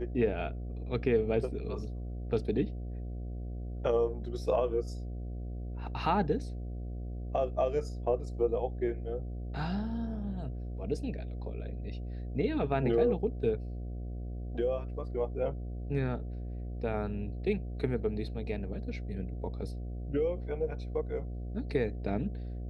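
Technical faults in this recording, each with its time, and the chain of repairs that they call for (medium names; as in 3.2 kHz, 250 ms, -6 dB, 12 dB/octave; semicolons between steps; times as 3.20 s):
buzz 60 Hz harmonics 12 -38 dBFS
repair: de-hum 60 Hz, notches 12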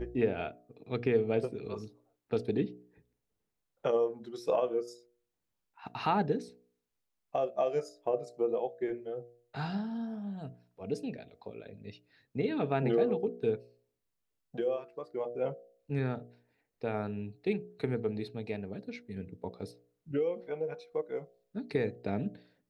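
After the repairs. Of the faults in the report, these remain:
nothing left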